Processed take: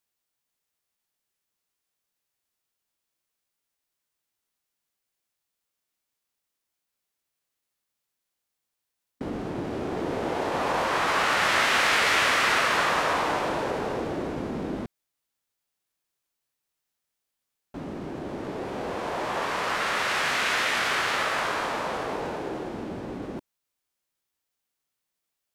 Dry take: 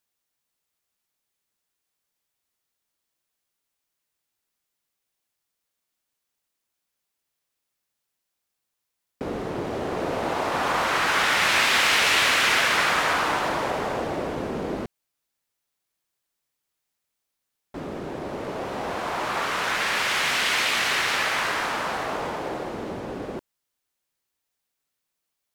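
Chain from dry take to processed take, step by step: formant shift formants -4 st; gain -2 dB

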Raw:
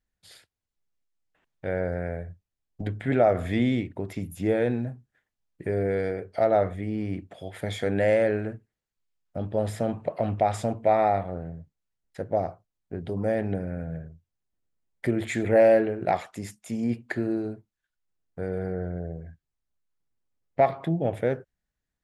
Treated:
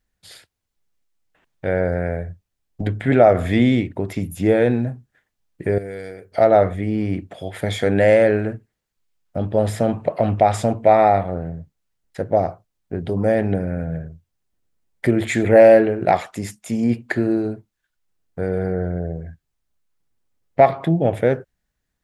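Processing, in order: 5.78–6.32 pre-emphasis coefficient 0.8; gain +8 dB

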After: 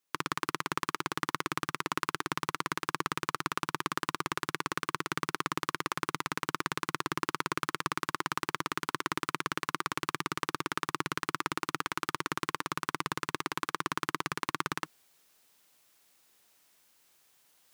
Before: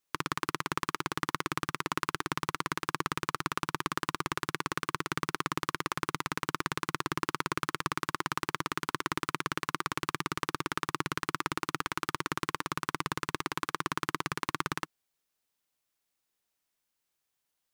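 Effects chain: low shelf 87 Hz -10 dB; reverse; upward compressor, threshold -51 dBFS; reverse

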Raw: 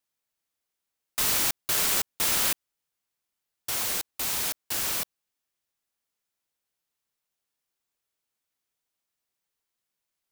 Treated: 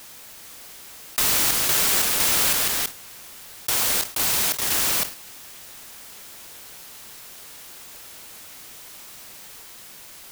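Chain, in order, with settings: modulation noise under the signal 17 dB; in parallel at -2.5 dB: level quantiser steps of 14 dB; on the sum: echoes that change speed 0.426 s, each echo +2 st, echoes 2, each echo -6 dB; fast leveller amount 70%

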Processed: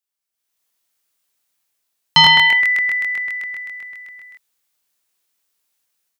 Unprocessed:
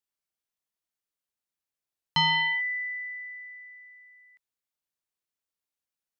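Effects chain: tilt +1.5 dB/oct; AGC gain up to 14.5 dB; crackling interface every 0.13 s, samples 1024, repeat, from 0.66

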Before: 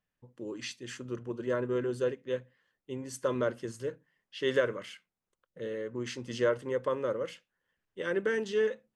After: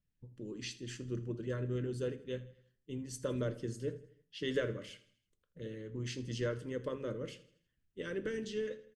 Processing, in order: passive tone stack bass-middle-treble 10-0-1; harmonic-percussive split percussive +8 dB; high shelf 9300 Hz -7.5 dB; on a send: feedback echo 81 ms, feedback 48%, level -18 dB; on the sum: shoebox room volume 220 m³, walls furnished, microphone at 0.49 m; gain +12.5 dB

